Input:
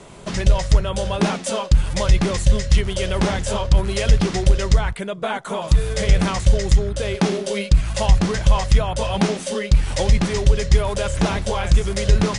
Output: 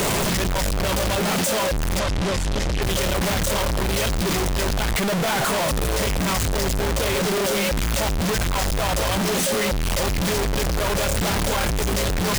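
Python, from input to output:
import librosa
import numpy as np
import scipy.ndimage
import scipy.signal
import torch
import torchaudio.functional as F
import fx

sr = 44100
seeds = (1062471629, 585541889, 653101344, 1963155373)

y = np.sign(x) * np.sqrt(np.mean(np.square(x)))
y = fx.air_absorb(y, sr, metres=57.0, at=(1.99, 2.82))
y = y * librosa.db_to_amplitude(-4.5)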